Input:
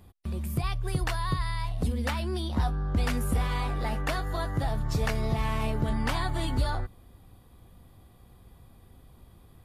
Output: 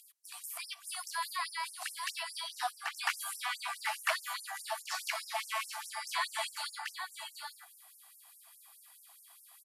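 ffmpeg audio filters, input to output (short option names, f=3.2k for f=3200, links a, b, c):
-filter_complex "[0:a]acrossover=split=3400[a][b];[b]acompressor=threshold=-52dB:ratio=4:attack=1:release=60[c];[a][c]amix=inputs=2:normalize=0,lowpass=10k,aemphasis=mode=production:type=75fm,bandreject=f=3.6k:w=13,aecho=1:1:785:0.422,afftfilt=real='re*gte(b*sr/1024,620*pow(5300/620,0.5+0.5*sin(2*PI*4.8*pts/sr)))':imag='im*gte(b*sr/1024,620*pow(5300/620,0.5+0.5*sin(2*PI*4.8*pts/sr)))':win_size=1024:overlap=0.75,volume=2dB"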